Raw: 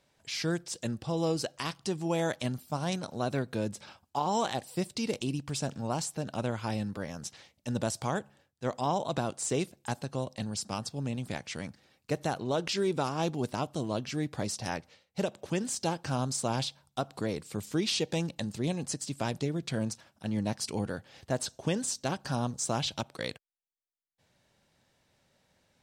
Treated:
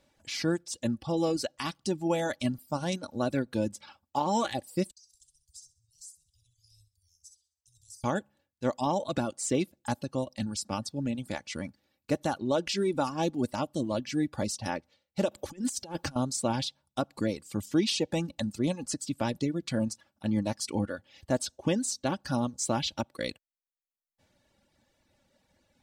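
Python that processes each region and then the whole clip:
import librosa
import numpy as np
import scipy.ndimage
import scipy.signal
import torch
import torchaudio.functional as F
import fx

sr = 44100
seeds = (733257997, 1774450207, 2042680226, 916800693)

y = fx.chain(x, sr, fx.cheby2_bandstop(low_hz=210.0, high_hz=1800.0, order=4, stop_db=60),
    fx.comb_fb(f0_hz=180.0, decay_s=0.36, harmonics='odd', damping=0.0, mix_pct=80),
    fx.echo_feedback(ms=65, feedback_pct=43, wet_db=-5), at=(4.91, 8.04))
y = fx.chain(y, sr, fx.high_shelf(hz=11000.0, db=7.0),
    fx.over_compress(threshold_db=-36.0, ratio=-0.5), at=(15.31, 16.16))
y = fx.low_shelf(y, sr, hz=460.0, db=5.0)
y = fx.dereverb_blind(y, sr, rt60_s=1.1)
y = y + 0.46 * np.pad(y, (int(3.5 * sr / 1000.0), 0))[:len(y)]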